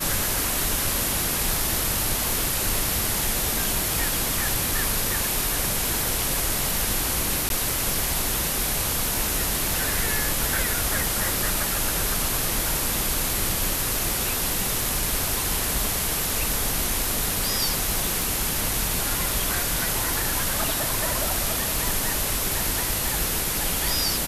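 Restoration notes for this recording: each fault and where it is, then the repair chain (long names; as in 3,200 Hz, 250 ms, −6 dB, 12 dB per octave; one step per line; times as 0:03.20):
0:07.49–0:07.50: drop-out 12 ms
0:18.22: click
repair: click removal
repair the gap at 0:07.49, 12 ms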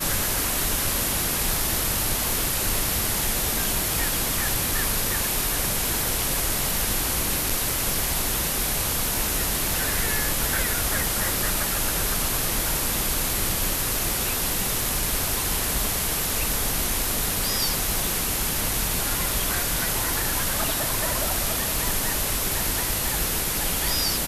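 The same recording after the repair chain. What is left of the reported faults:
none of them is left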